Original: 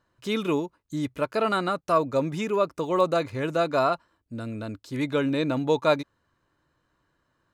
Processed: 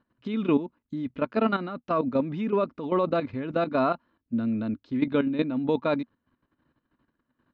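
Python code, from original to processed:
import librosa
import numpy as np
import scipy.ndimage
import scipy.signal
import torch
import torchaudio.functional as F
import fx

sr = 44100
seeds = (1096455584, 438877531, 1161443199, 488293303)

y = scipy.signal.sosfilt(scipy.signal.butter(4, 3700.0, 'lowpass', fs=sr, output='sos'), x)
y = fx.level_steps(y, sr, step_db=12)
y = fx.peak_eq(y, sr, hz=240.0, db=14.5, octaves=0.54)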